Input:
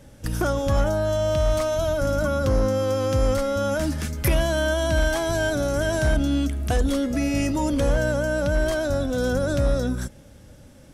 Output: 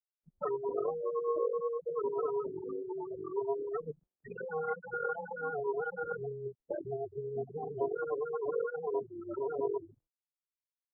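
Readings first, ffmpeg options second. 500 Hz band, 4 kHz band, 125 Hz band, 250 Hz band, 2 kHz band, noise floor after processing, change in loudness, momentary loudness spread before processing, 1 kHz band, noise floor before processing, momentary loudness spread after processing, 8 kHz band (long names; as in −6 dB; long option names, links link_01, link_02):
−10.0 dB, below −40 dB, −27.0 dB, −21.0 dB, −16.0 dB, below −85 dBFS, −13.0 dB, 3 LU, −9.0 dB, −47 dBFS, 7 LU, below −40 dB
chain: -af "aecho=1:1:6.9:0.66,aecho=1:1:711|1422|2133:0.112|0.0381|0.013,flanger=delay=9.8:depth=5:regen=46:speed=1.1:shape=sinusoidal,acrusher=bits=3:dc=4:mix=0:aa=0.000001,afftfilt=real='re*gte(hypot(re,im),0.0891)':imag='im*gte(hypot(re,im),0.0891)':win_size=1024:overlap=0.75,highpass=frequency=490:width_type=q:width=0.5412,highpass=frequency=490:width_type=q:width=1.307,lowpass=frequency=2000:width_type=q:width=0.5176,lowpass=frequency=2000:width_type=q:width=0.7071,lowpass=frequency=2000:width_type=q:width=1.932,afreqshift=-150"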